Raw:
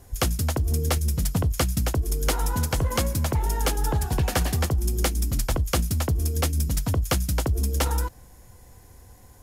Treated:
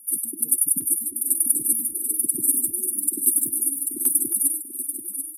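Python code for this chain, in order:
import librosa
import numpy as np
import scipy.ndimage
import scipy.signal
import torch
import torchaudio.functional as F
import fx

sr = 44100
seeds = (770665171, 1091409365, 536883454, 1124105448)

p1 = scipy.signal.sosfilt(scipy.signal.butter(4, 220.0, 'highpass', fs=sr, output='sos'), x)
p2 = fx.high_shelf_res(p1, sr, hz=7500.0, db=11.5, q=3.0)
p3 = p2 + 0.48 * np.pad(p2, (int(2.8 * sr / 1000.0), 0))[:len(p2)]
p4 = fx.stretch_grains(p3, sr, factor=0.57, grain_ms=104.0)
p5 = scipy.signal.sosfilt(scipy.signal.ellip(3, 1.0, 50, [310.0, 4300.0], 'bandstop', fs=sr, output='sos'), p4)
p6 = p5 + fx.echo_feedback(p5, sr, ms=737, feedback_pct=43, wet_db=-9, dry=0)
p7 = fx.spec_gate(p6, sr, threshold_db=-15, keep='strong')
y = fx.filter_held_notch(p7, sr, hz=7.4, low_hz=610.0, high_hz=4100.0)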